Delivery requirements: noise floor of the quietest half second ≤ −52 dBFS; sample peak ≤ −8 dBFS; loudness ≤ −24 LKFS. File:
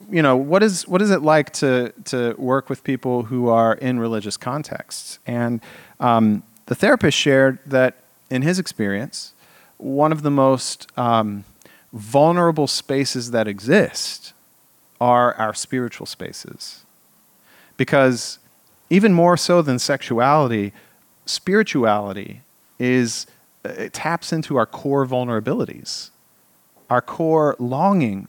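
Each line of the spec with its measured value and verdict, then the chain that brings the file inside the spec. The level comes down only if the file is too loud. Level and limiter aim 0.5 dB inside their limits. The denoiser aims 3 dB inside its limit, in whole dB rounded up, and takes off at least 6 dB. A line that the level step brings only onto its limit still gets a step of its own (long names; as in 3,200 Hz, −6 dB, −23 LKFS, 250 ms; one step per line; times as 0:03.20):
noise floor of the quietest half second −57 dBFS: in spec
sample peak −3.0 dBFS: out of spec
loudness −19.0 LKFS: out of spec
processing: level −5.5 dB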